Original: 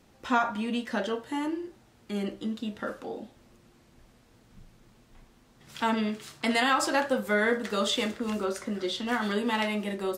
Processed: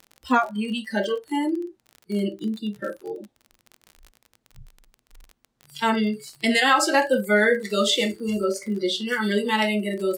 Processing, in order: spectral noise reduction 23 dB; crackle 34/s -39 dBFS; gain +7 dB

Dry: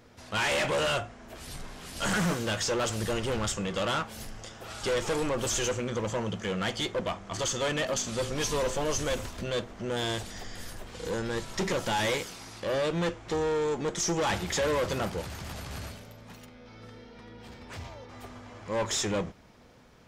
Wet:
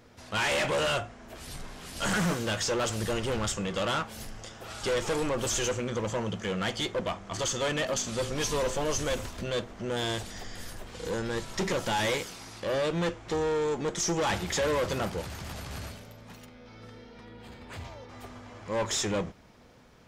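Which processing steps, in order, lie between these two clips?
17.25–17.85 bell 5600 Hz -10.5 dB 0.2 oct

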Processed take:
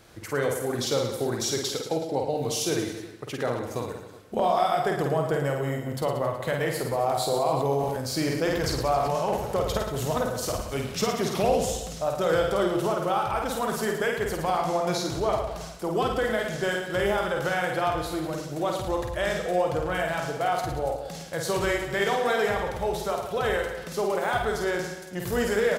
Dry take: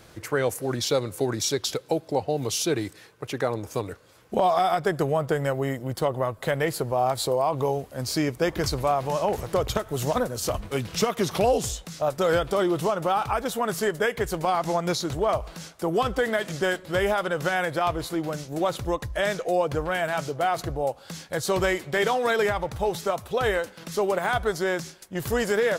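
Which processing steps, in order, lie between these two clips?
reverse bouncing-ball echo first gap 50 ms, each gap 1.2×, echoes 5; reverb RT60 1.3 s, pre-delay 35 ms, DRR 13 dB; 7.3–9.36 sustainer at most 31 dB/s; gain -3.5 dB

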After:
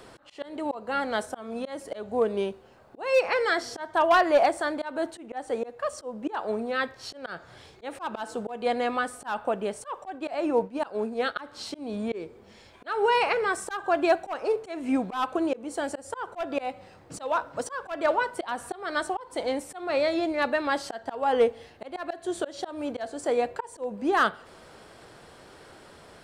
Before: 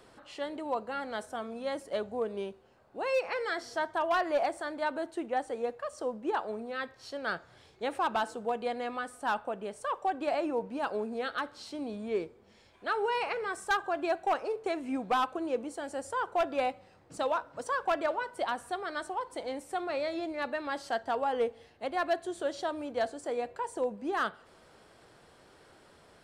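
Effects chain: 10.04–11.36 expander -31 dBFS; auto swell 0.24 s; gain +8.5 dB

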